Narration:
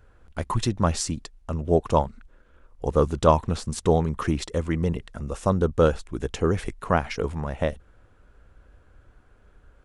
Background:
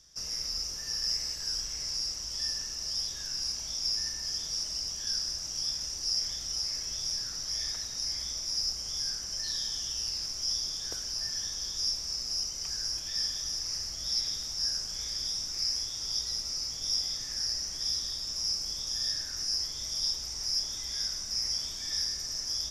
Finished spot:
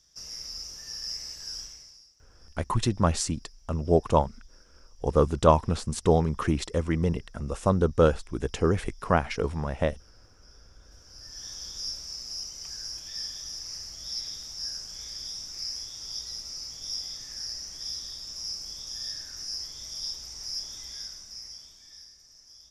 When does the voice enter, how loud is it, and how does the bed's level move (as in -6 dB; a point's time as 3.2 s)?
2.20 s, -1.0 dB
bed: 1.63 s -4.5 dB
2.14 s -27.5 dB
10.78 s -27.5 dB
11.5 s -4 dB
20.84 s -4 dB
22.16 s -19.5 dB